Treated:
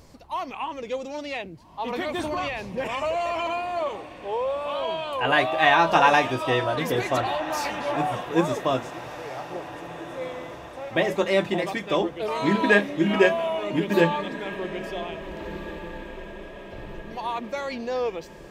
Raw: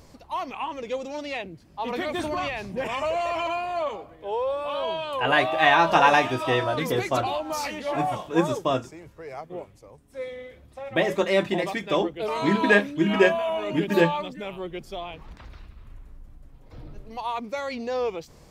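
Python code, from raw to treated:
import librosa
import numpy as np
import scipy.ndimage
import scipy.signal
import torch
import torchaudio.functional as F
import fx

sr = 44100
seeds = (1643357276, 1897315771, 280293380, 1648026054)

y = fx.echo_diffused(x, sr, ms=1707, feedback_pct=50, wet_db=-14)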